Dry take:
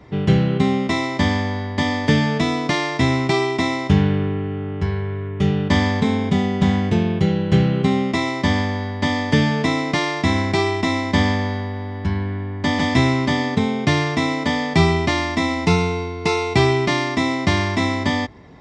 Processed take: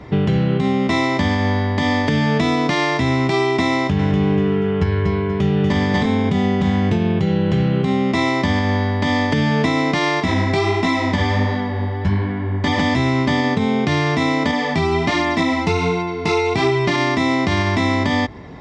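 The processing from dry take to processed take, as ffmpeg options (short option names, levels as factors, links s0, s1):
-filter_complex "[0:a]asettb=1/sr,asplit=3[s0][s1][s2];[s0]atrim=end=3.754[s3];[s1]atrim=start=3.75:end=6.06,asetpts=PTS-STARTPTS,afade=t=in:d=0.004:c=qsin,afade=t=out:st=2.306:d=0.004:c=qsin,aecho=1:1:240|480|720|960:0.631|0.17|0.046|0.0124,atrim=end_sample=101871[s4];[s2]atrim=start=6.056[s5];[s3][s4]acrossfade=d=0.004:c1=hsin:c2=qsin[s6];[s6][s5]acrossfade=d=0.004:c1=qsin:c2=hsin,asettb=1/sr,asplit=3[s7][s8][s9];[s7]atrim=end=10.204[s10];[s8]atrim=start=10.2:end=12.78,asetpts=PTS-STARTPTS,afade=t=in:d=0.004:c=qsin,afade=t=out:st=2.576:d=0.004:c=qsin,flanger=delay=16:depth=6.9:speed=1.4[s11];[s9]atrim=start=12.776[s12];[s10][s11]acrossfade=d=0.004:c1=hsin:c2=qsin[s13];[s13][s12]acrossfade=d=0.004:c1=qsin:c2=hsin,asettb=1/sr,asplit=3[s14][s15][s16];[s14]atrim=end=14.514[s17];[s15]atrim=start=14.51:end=16.96,asetpts=PTS-STARTPTS,afade=t=in:d=0.004:c=qsin,afade=t=out:st=2.446:d=0.004:c=qsin,flanger=delay=17:depth=3.5:speed=1.3[s18];[s16]atrim=start=16.956[s19];[s17][s18]acrossfade=d=0.004:c1=hsin:c2=qsin[s20];[s20][s19]acrossfade=d=0.004:c1=qsin:c2=hsin,highshelf=f=7300:g=-7.5,acompressor=threshold=0.0891:ratio=6,alimiter=level_in=5.62:limit=0.891:release=50:level=0:latency=1,volume=0.447"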